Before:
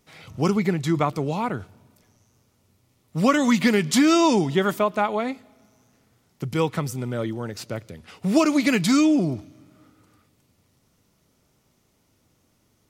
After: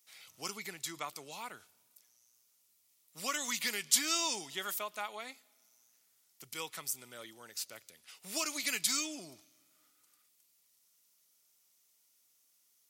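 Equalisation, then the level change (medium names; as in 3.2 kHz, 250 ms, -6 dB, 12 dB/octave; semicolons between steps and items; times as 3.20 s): differentiator; 0.0 dB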